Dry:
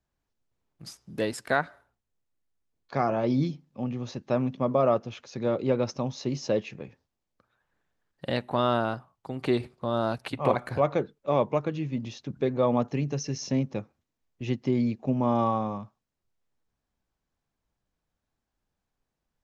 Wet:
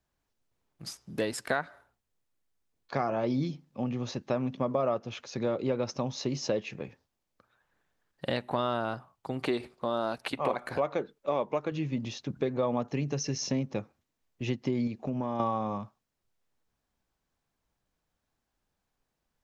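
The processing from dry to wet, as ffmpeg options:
-filter_complex "[0:a]asettb=1/sr,asplit=3[a][b][c];[a]atrim=end=9.454[d];[b]atrim=start=9.45:end=11.72,asetpts=PTS-STARTPTS,afade=t=in:d=0.004:c=qsin,afade=t=out:st=2.266:d=0.004:c=qsin,equalizer=f=110:w=1.2:g=-9.5[e];[c]atrim=start=11.716[f];[d][e]acrossfade=d=0.004:c1=hsin:c2=qsin[g];[g][f]acrossfade=d=0.004:c1=qsin:c2=hsin,asettb=1/sr,asplit=3[h][i][j];[h]atrim=end=14.874[k];[i]atrim=start=14.87:end=15.4,asetpts=PTS-STARTPTS,afade=t=in:d=0.004:c=qsin,afade=t=out:st=0.526:d=0.004:c=qsin,acompressor=threshold=-29dB:ratio=4:attack=3.2:release=140:knee=1:detection=peak[l];[j]atrim=start=15.396[m];[k][l]acrossfade=d=0.004:c1=hsin:c2=qsin[n];[n][m]acrossfade=d=0.004:c1=qsin:c2=hsin,lowshelf=f=320:g=-3.5,acompressor=threshold=-30dB:ratio=3,volume=3dB"

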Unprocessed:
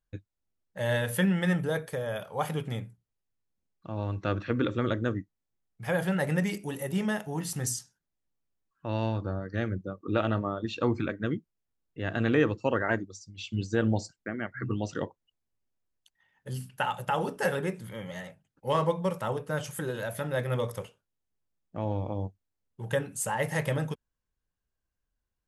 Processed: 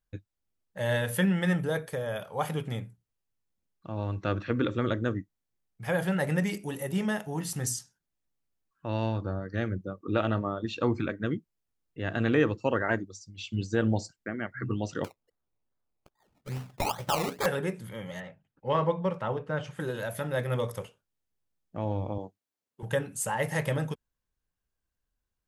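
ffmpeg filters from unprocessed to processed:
-filter_complex "[0:a]asettb=1/sr,asplit=3[a][b][c];[a]atrim=end=15.044[d];[b]atrim=start=15.04:end=17.46,asetpts=PTS-STARTPTS,afade=t=in:d=0.004:c=qsin,afade=t=out:st=2.416:d=0.004:c=qsin,acrusher=samples=22:mix=1:aa=0.000001:lfo=1:lforange=13.2:lforate=2.4[e];[c]atrim=start=17.456[f];[d][e]acrossfade=d=0.004:c1=hsin:c2=qsin[g];[g][f]acrossfade=d=0.004:c1=qsin:c2=hsin,asettb=1/sr,asplit=3[h][i][j];[h]atrim=end=18.204[k];[i]atrim=start=18.2:end=19.8,asetpts=PTS-STARTPTS,afade=t=in:d=0.004:c=qsin,afade=t=out:st=1.596:d=0.004:c=qsin,lowpass=3.2k[l];[j]atrim=start=19.796[m];[k][l]acrossfade=d=0.004:c1=hsin:c2=qsin[n];[n][m]acrossfade=d=0.004:c1=qsin:c2=hsin,asettb=1/sr,asplit=3[o][p][q];[o]atrim=end=22.184[r];[p]atrim=start=22.18:end=22.83,asetpts=PTS-STARTPTS,afade=t=in:d=0.004:c=qsin,afade=t=out:st=0.646:d=0.004:c=qsin,highpass=250[s];[q]atrim=start=22.826[t];[r][s]acrossfade=d=0.004:c1=hsin:c2=qsin[u];[u][t]acrossfade=d=0.004:c1=qsin:c2=hsin"

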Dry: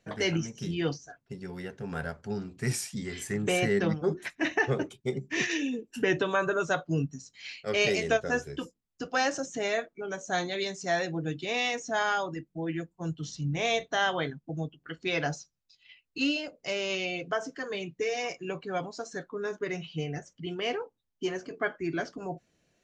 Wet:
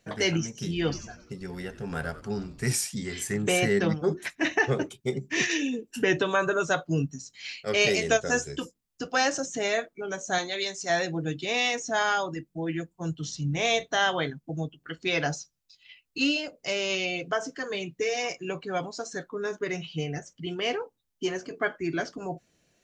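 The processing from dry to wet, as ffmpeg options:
-filter_complex "[0:a]asettb=1/sr,asplit=3[a][b][c];[a]atrim=end=0.664[d];[b]atrim=start=0.66:end=2.72,asetpts=PTS-STARTPTS,afade=t=in:d=0.004:c=qsin,afade=t=out:st=2.056:d=0.004:c=qsin,asplit=6[e][f][g][h][i][j];[f]adelay=92,afreqshift=-130,volume=-15dB[k];[g]adelay=184,afreqshift=-260,volume=-20.2dB[l];[h]adelay=276,afreqshift=-390,volume=-25.4dB[m];[i]adelay=368,afreqshift=-520,volume=-30.6dB[n];[j]adelay=460,afreqshift=-650,volume=-35.8dB[o];[e][k][l][m][n][o]amix=inputs=6:normalize=0,atrim=end_sample=90846[p];[c]atrim=start=2.716[q];[d][p]acrossfade=d=0.004:c1=hsin:c2=qsin[r];[r][q]acrossfade=d=0.004:c1=qsin:c2=hsin,asettb=1/sr,asplit=3[s][t][u];[s]atrim=end=8.114[v];[t]atrim=start=8.11:end=8.6,asetpts=PTS-STARTPTS,afade=t=in:d=0.004:c=qsin,afade=t=out:st=0.486:d=0.004:c=qsin,lowpass=f=7.5k:t=q:w=3.1[w];[u]atrim=start=8.596[x];[v][w]acrossfade=d=0.004:c1=hsin:c2=qsin[y];[y][x]acrossfade=d=0.004:c1=qsin:c2=hsin,asettb=1/sr,asplit=3[z][aa][ab];[z]atrim=end=10.384[ac];[aa]atrim=start=10.38:end=10.9,asetpts=PTS-STARTPTS,afade=t=in:d=0.004:c=qsin,afade=t=out:st=0.516:d=0.004:c=qsin,equalizer=f=82:w=0.35:g=-12[ad];[ab]atrim=start=10.896[ae];[ac][ad]acrossfade=d=0.004:c1=hsin:c2=qsin[af];[af][ae]acrossfade=d=0.004:c1=qsin:c2=hsin,highshelf=f=4.3k:g=5.5,volume=2dB"

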